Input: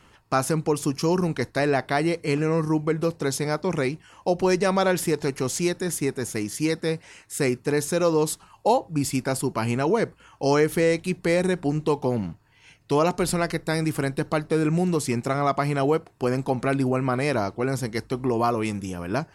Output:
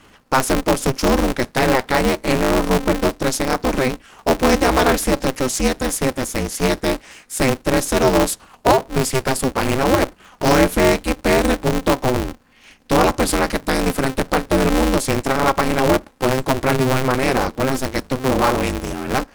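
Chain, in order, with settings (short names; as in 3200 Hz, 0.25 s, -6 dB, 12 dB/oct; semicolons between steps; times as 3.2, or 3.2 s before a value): polarity switched at an audio rate 130 Hz; gain +6 dB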